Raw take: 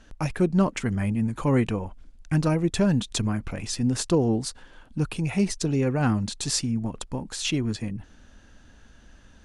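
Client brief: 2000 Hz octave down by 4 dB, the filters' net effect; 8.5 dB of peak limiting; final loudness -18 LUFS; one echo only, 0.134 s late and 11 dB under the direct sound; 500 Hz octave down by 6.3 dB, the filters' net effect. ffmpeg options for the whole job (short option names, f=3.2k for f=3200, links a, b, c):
-af "equalizer=f=500:t=o:g=-8.5,equalizer=f=2k:t=o:g=-5,alimiter=limit=-21dB:level=0:latency=1,aecho=1:1:134:0.282,volume=12.5dB"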